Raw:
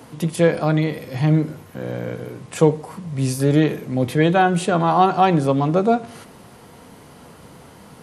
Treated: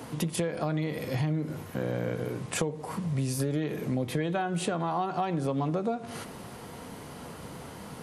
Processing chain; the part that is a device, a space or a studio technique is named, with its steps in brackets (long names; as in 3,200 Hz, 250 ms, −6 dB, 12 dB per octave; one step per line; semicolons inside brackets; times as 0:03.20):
serial compression, peaks first (downward compressor 5 to 1, threshold −22 dBFS, peak gain reduction 12.5 dB; downward compressor 2.5 to 1, threshold −29 dBFS, peak gain reduction 7.5 dB)
level +1 dB